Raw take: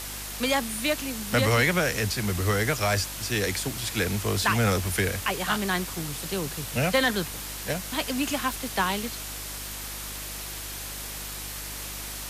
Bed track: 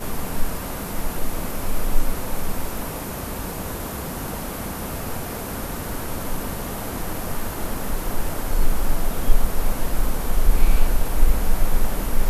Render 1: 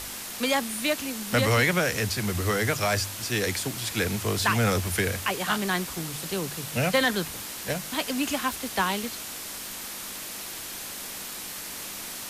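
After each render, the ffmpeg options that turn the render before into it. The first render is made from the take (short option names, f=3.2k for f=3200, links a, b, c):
-af "bandreject=f=50:t=h:w=4,bandreject=f=100:t=h:w=4,bandreject=f=150:t=h:w=4"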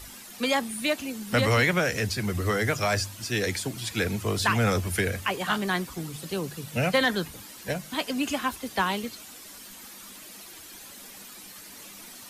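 -af "afftdn=nr=11:nf=-37"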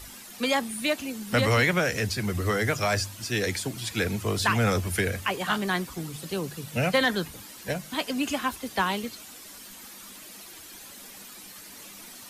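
-af anull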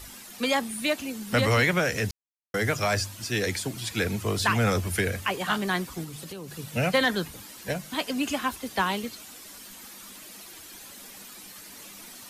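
-filter_complex "[0:a]asettb=1/sr,asplit=3[a][b][c];[a]atrim=end=6.044[d];[b]atrim=start=6.04:end=6.59,asetpts=PTS-STARTPTS,afade=t=in:d=0.004:c=qsin,afade=t=out:st=0.546:d=0.004:c=qsin,acompressor=threshold=-35dB:ratio=6:attack=3.2:release=140:knee=1:detection=peak[e];[c]atrim=start=6.586[f];[d][e]acrossfade=d=0.004:c1=hsin:c2=qsin[g];[g][f]acrossfade=d=0.004:c1=qsin:c2=hsin,asplit=3[h][i][j];[h]atrim=end=2.11,asetpts=PTS-STARTPTS,afade=t=out:st=2.106:d=0.004:c=hsin[k];[i]atrim=start=2.11:end=2.54,asetpts=PTS-STARTPTS,volume=0[l];[j]atrim=start=2.54,asetpts=PTS-STARTPTS,afade=t=in:d=0.004:c=hsin[m];[k][l][m]concat=n=3:v=0:a=1"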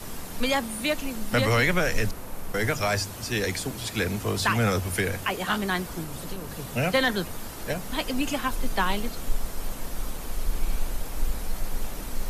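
-filter_complex "[1:a]volume=-10.5dB[a];[0:a][a]amix=inputs=2:normalize=0"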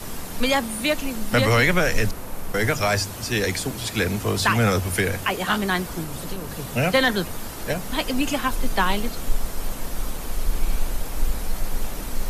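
-af "volume=4dB"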